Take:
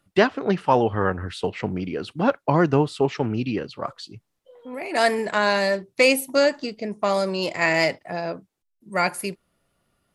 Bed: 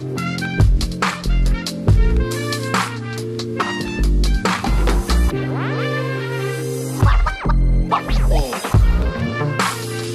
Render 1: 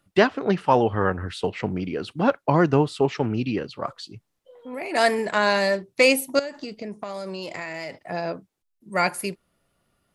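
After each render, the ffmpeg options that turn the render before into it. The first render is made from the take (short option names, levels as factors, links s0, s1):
-filter_complex "[0:a]asettb=1/sr,asplit=3[s0][s1][s2];[s0]atrim=end=6.394[s3];[s1]atrim=start=6.39:end=8.04,asetpts=PTS-STARTPTS,afade=t=in:d=0.004:c=qsin,afade=t=out:st=1.646:d=0.004:c=qsin,acompressor=threshold=0.0398:ratio=12:attack=3.2:release=140:knee=1:detection=peak[s4];[s2]atrim=start=8.036[s5];[s3][s4]acrossfade=d=0.004:c1=hsin:c2=qsin[s6];[s6][s5]acrossfade=d=0.004:c1=qsin:c2=hsin"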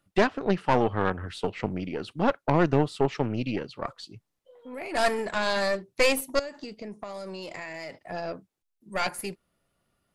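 -af "aeval=exprs='(tanh(5.01*val(0)+0.75)-tanh(0.75))/5.01':c=same"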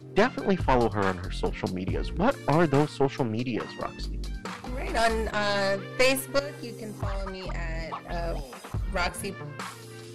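-filter_complex "[1:a]volume=0.119[s0];[0:a][s0]amix=inputs=2:normalize=0"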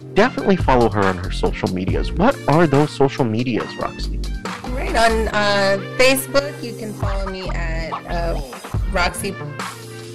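-af "volume=2.99,alimiter=limit=0.794:level=0:latency=1"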